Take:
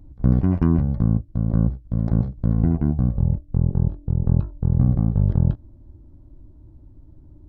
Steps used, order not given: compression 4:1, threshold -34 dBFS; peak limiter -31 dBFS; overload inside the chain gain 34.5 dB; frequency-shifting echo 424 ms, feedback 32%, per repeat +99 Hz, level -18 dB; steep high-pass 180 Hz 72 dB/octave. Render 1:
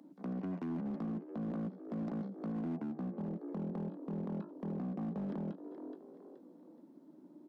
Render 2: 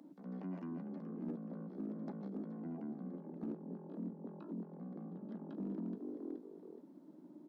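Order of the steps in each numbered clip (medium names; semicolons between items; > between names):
steep high-pass > frequency-shifting echo > compression > peak limiter > overload inside the chain; frequency-shifting echo > peak limiter > steep high-pass > compression > overload inside the chain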